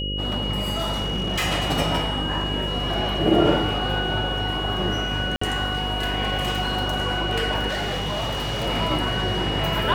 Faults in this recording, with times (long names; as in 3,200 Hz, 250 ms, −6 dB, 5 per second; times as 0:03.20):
mains buzz 50 Hz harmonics 11 −29 dBFS
whistle 2,900 Hz −28 dBFS
0:00.77–0:01.45: clipping −20 dBFS
0:05.36–0:05.41: drop-out 54 ms
0:07.68–0:08.67: clipping −23 dBFS